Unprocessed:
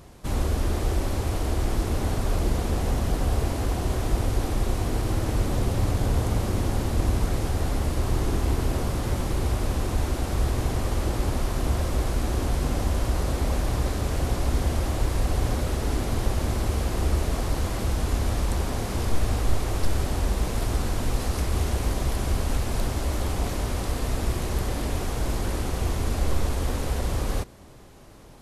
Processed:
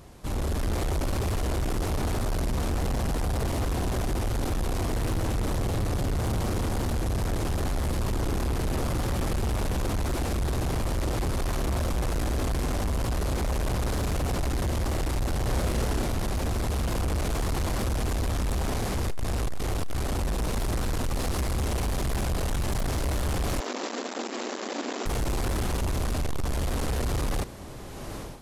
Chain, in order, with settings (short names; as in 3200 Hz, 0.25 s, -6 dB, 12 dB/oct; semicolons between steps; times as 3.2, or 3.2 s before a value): in parallel at +3 dB: limiter -17 dBFS, peak gain reduction 7 dB; on the sum: AGC gain up to 16 dB; soft clip -15.5 dBFS, distortion -8 dB; 15.44–16.07 doubler 32 ms -5.5 dB; 23.6–25.06 brick-wall FIR band-pass 210–7700 Hz; on a send: thinning echo 76 ms, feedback 37%, level -22.5 dB; on the sum: gain -8.5 dB